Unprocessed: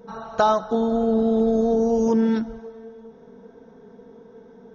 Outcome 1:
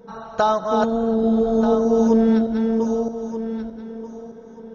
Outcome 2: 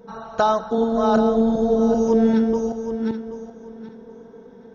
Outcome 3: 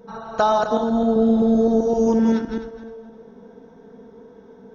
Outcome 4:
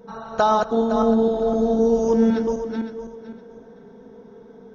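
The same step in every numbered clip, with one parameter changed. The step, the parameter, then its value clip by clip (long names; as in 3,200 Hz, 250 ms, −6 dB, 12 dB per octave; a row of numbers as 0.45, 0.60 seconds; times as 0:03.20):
feedback delay that plays each chunk backwards, delay time: 617, 389, 129, 256 milliseconds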